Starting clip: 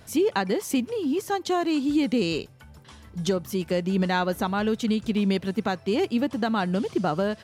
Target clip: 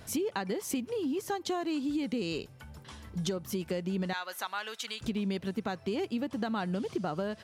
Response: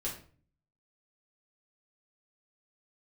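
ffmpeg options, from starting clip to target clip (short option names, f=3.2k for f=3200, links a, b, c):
-filter_complex "[0:a]asettb=1/sr,asplit=3[a][b][c];[a]atrim=end=4.134[d];[b]atrim=start=4.13:end=5.01,asetpts=PTS-STARTPTS,afade=t=in:d=0.004:c=qsin,afade=t=out:st=0.876:d=0.004:c=qsin,highpass=1.2k[e];[c]atrim=start=5.006[f];[d][e]acrossfade=d=0.004:c1=hsin:c2=qsin[g];[g][f]acrossfade=d=0.004:c1=qsin:c2=hsin,acompressor=threshold=-31dB:ratio=4"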